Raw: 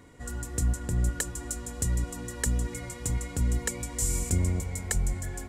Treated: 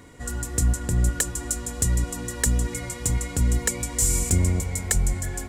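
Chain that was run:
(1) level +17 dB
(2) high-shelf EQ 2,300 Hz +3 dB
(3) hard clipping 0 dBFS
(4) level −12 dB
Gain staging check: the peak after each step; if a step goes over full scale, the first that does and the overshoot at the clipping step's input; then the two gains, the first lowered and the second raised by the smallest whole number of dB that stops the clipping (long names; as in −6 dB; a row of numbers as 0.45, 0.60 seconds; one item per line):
+2.5, +5.5, 0.0, −12.0 dBFS
step 1, 5.5 dB
step 1 +11 dB, step 4 −6 dB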